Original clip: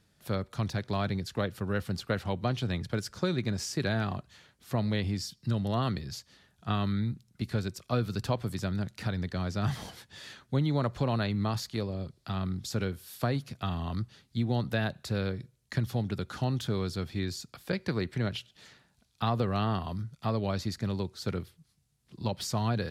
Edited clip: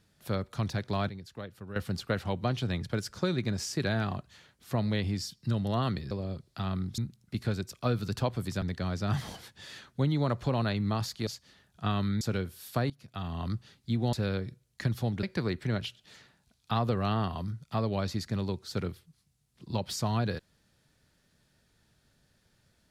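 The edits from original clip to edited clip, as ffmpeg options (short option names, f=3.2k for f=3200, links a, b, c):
-filter_complex "[0:a]asplit=11[a][b][c][d][e][f][g][h][i][j][k];[a]atrim=end=1.092[l];[b]atrim=start=1.088:end=1.762,asetpts=PTS-STARTPTS,volume=-10.5dB[m];[c]atrim=start=1.758:end=6.112[n];[d]atrim=start=11.808:end=12.682[o];[e]atrim=start=7.048:end=8.692[p];[f]atrim=start=9.158:end=11.812[q];[g]atrim=start=6.108:end=7.052[r];[h]atrim=start=12.678:end=13.37,asetpts=PTS-STARTPTS,afade=t=out:st=0.688:d=0.004:c=hsin:silence=0.112202[s];[i]atrim=start=13.37:end=14.602,asetpts=PTS-STARTPTS,afade=t=in:d=0.56:silence=0.112202[t];[j]atrim=start=15.048:end=16.152[u];[k]atrim=start=17.738[v];[l][m]acrossfade=d=0.004:c1=hsin:c2=hsin[w];[w][n]acrossfade=d=0.004:c1=hsin:c2=hsin[x];[x][o]acrossfade=d=0.004:c1=hsin:c2=hsin[y];[y][p]acrossfade=d=0.004:c1=hsin:c2=hsin[z];[z][q]acrossfade=d=0.004:c1=hsin:c2=hsin[aa];[aa][r]acrossfade=d=0.004:c1=hsin:c2=hsin[ab];[s][t]concat=n=2:v=0:a=1[ac];[ab][ac]acrossfade=d=0.004:c1=hsin:c2=hsin[ad];[ad][u]acrossfade=d=0.004:c1=hsin:c2=hsin[ae];[ae][v]acrossfade=d=0.004:c1=hsin:c2=hsin"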